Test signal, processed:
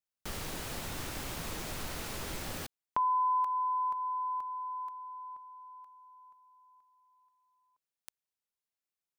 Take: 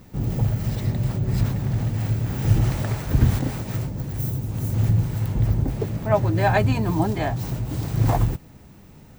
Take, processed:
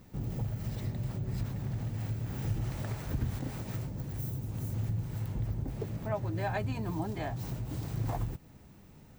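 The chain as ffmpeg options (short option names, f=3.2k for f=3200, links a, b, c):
-af "acompressor=threshold=-26dB:ratio=2,volume=-8dB"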